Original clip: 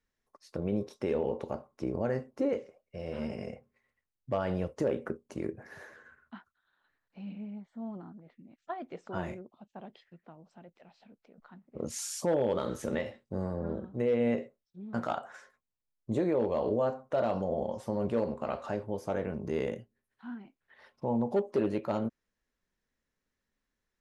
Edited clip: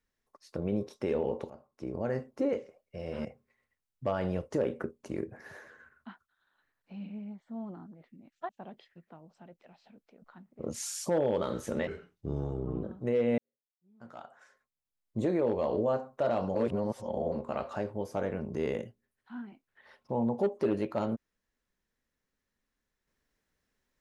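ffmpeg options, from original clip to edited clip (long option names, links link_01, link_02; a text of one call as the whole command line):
ffmpeg -i in.wav -filter_complex "[0:a]asplit=9[link_01][link_02][link_03][link_04][link_05][link_06][link_07][link_08][link_09];[link_01]atrim=end=1.5,asetpts=PTS-STARTPTS,afade=type=out:start_time=1.496:duration=0.004:curve=hsin:silence=0.158489[link_10];[link_02]atrim=start=1.5:end=3.252,asetpts=PTS-STARTPTS,afade=type=in:duration=0.7:silence=0.158489[link_11];[link_03]atrim=start=3.508:end=8.752[link_12];[link_04]atrim=start=9.648:end=13.034[link_13];[link_05]atrim=start=13.03:end=13.76,asetpts=PTS-STARTPTS,asetrate=33516,aresample=44100,atrim=end_sample=42359,asetpts=PTS-STARTPTS[link_14];[link_06]atrim=start=13.756:end=14.31,asetpts=PTS-STARTPTS,afade=type=out:start_time=0.55:duration=0.004:curve=hsin[link_15];[link_07]atrim=start=14.31:end=17.482,asetpts=PTS-STARTPTS,afade=type=in:duration=1.79:curve=qua[link_16];[link_08]atrim=start=17.478:end=18.252,asetpts=PTS-STARTPTS,areverse[link_17];[link_09]atrim=start=18.248[link_18];[link_10][link_11]concat=n=2:v=0:a=1[link_19];[link_19][link_12]acrossfade=duration=0.004:curve1=hsin:curve2=hsin[link_20];[link_20][link_13]acrossfade=duration=0.004:curve1=hsin:curve2=hsin[link_21];[link_21][link_14]acrossfade=duration=0.004:curve1=hsin:curve2=hsin[link_22];[link_15][link_16]concat=n=2:v=0:a=1[link_23];[link_22][link_23]acrossfade=duration=0.004:curve1=hsin:curve2=hsin[link_24];[link_24][link_17]acrossfade=duration=0.004:curve1=hsin:curve2=hsin[link_25];[link_25][link_18]acrossfade=duration=0.004:curve1=hsin:curve2=hsin" out.wav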